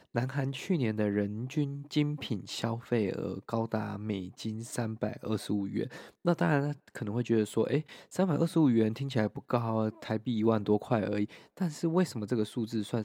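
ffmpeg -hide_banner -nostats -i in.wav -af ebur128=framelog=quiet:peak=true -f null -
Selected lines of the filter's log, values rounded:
Integrated loudness:
  I:         -31.7 LUFS
  Threshold: -41.7 LUFS
Loudness range:
  LRA:         4.7 LU
  Threshold: -51.6 LUFS
  LRA low:   -34.4 LUFS
  LRA high:  -29.7 LUFS
True peak:
  Peak:      -11.7 dBFS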